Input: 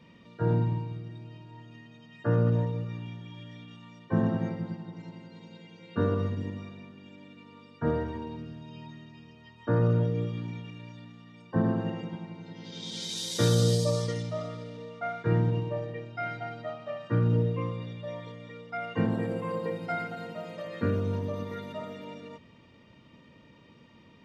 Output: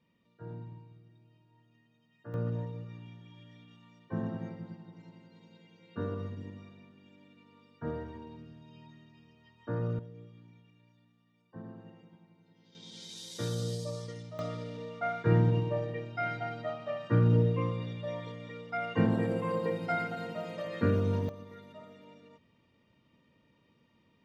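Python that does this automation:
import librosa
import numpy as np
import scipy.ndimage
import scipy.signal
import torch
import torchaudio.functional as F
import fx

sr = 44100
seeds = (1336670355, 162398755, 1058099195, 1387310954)

y = fx.gain(x, sr, db=fx.steps((0.0, -18.0), (2.34, -9.0), (9.99, -20.0), (12.75, -11.0), (14.39, 0.5), (21.29, -12.0)))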